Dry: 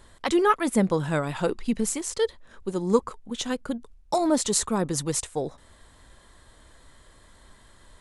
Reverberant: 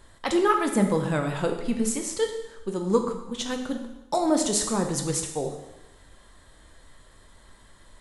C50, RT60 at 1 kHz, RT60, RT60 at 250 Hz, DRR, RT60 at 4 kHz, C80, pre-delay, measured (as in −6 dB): 7.0 dB, 0.95 s, 1.0 s, 1.0 s, 3.5 dB, 0.95 s, 9.0 dB, 7 ms